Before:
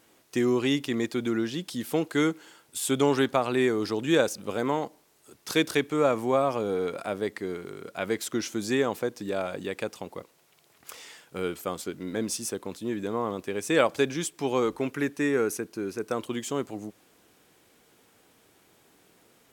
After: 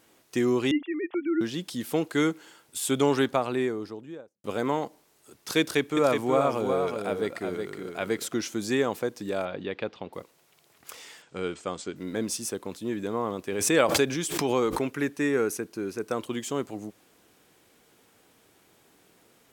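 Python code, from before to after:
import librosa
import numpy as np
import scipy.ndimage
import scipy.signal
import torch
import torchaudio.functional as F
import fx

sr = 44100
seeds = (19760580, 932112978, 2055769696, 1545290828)

y = fx.sine_speech(x, sr, at=(0.71, 1.41))
y = fx.studio_fade_out(y, sr, start_s=3.16, length_s=1.28)
y = fx.echo_single(y, sr, ms=367, db=-5.5, at=(5.6, 8.34))
y = fx.cheby1_lowpass(y, sr, hz=3800.0, order=3, at=(9.45, 10.13))
y = fx.ellip_lowpass(y, sr, hz=8100.0, order=4, stop_db=60, at=(11.22, 11.96))
y = fx.pre_swell(y, sr, db_per_s=50.0, at=(13.52, 14.91))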